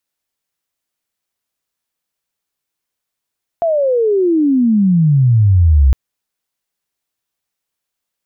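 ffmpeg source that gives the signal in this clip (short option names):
-f lavfi -i "aevalsrc='pow(10,(-11.5+6*t/2.31)/20)*sin(2*PI*690*2.31/log(63/690)*(exp(log(63/690)*t/2.31)-1))':d=2.31:s=44100"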